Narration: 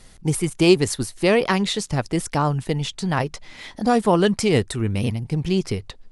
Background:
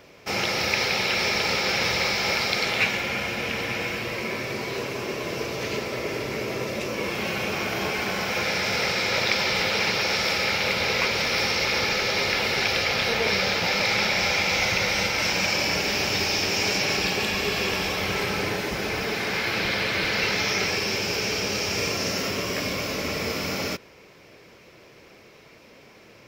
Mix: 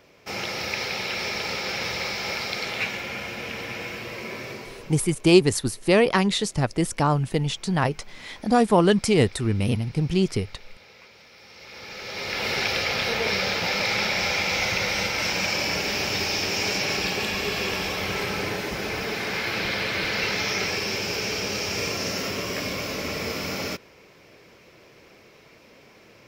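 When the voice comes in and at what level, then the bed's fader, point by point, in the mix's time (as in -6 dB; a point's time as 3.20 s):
4.65 s, -0.5 dB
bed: 4.49 s -5 dB
5.39 s -26.5 dB
11.39 s -26.5 dB
12.49 s -1.5 dB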